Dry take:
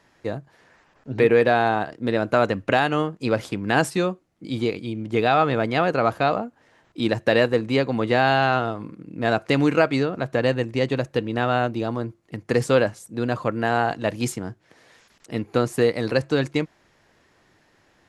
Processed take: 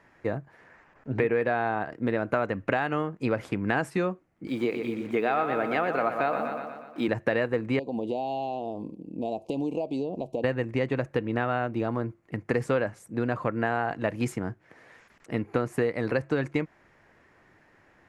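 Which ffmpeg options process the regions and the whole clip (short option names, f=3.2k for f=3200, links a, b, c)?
-filter_complex "[0:a]asettb=1/sr,asplit=3[a][b][c];[a]atrim=end=4.474[d];[b]atrim=start=4.47:end=7.08,asetpts=PTS-STARTPTS,afade=t=in:d=0.004:c=qsin,afade=t=out:st=2.606:d=0.004:c=qsin,highpass=230,acrusher=bits=7:mix=0:aa=0.5,aecho=1:1:121|242|363|484|605|726|847:0.355|0.202|0.115|0.0657|0.0375|0.0213|0.0122,atrim=end_sample=115101[e];[c]atrim=start=7.076[f];[d][e]acrossfade=d=0.004:c1=hsin:c2=qsin[g];[g][f]acrossfade=d=0.004:c1=qsin:c2=hsin,asettb=1/sr,asplit=3[h][i][j];[h]atrim=end=7.794[k];[i]atrim=start=7.79:end=10.44,asetpts=PTS-STARTPTS,afade=t=in:d=0.004:c=qsin,afade=t=out:st=2.646:d=0.004:c=qsin,equalizer=f=120:t=o:w=0.53:g=-13,acompressor=threshold=-27dB:ratio=3:attack=3.2:release=140:knee=1:detection=peak,asuperstop=centerf=1600:order=8:qfactor=0.78[l];[j]atrim=start=10.436[m];[k][l]acrossfade=d=0.004:c1=hsin:c2=qsin[n];[n][m]acrossfade=d=0.004:c1=qsin:c2=hsin,highshelf=f=2.8k:t=q:w=1.5:g=-8,acompressor=threshold=-23dB:ratio=4"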